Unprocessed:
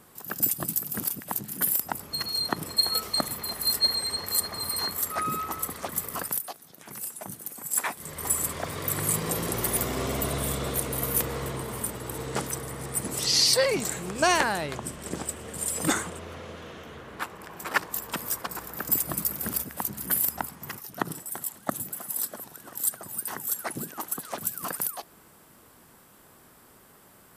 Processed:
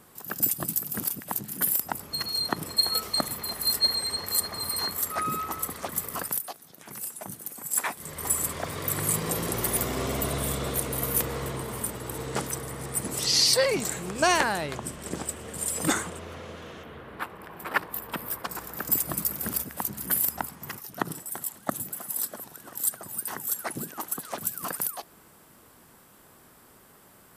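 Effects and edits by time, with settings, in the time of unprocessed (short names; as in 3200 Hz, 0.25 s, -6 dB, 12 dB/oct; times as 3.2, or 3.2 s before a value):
16.83–18.44 bell 6600 Hz -14 dB 1 oct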